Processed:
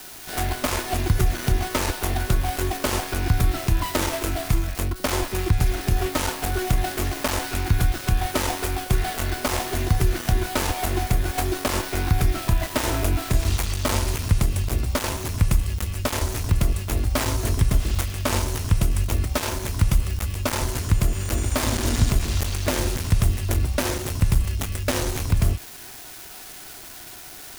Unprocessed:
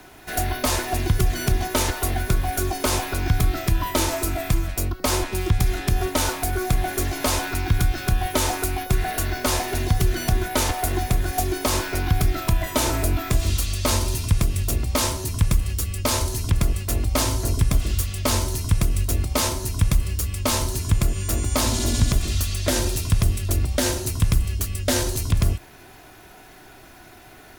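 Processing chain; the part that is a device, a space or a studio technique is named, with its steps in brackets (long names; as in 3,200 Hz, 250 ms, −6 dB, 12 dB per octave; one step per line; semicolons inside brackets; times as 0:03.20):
budget class-D amplifier (gap after every zero crossing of 0.21 ms; spike at every zero crossing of −23.5 dBFS)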